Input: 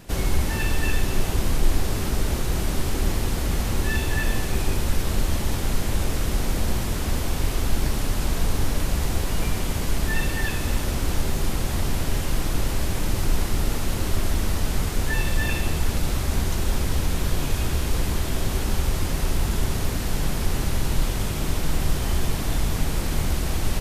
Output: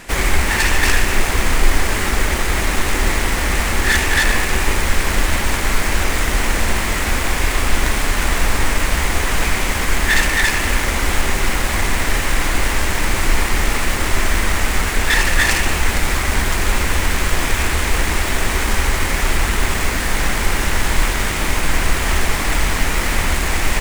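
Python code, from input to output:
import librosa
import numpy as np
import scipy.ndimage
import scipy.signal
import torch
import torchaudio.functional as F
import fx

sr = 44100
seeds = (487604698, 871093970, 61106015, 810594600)

y = fx.self_delay(x, sr, depth_ms=0.76)
y = fx.graphic_eq_10(y, sr, hz=(125, 1000, 2000, 8000), db=(-9, 4, 11, 7))
y = y * 10.0 ** (6.0 / 20.0)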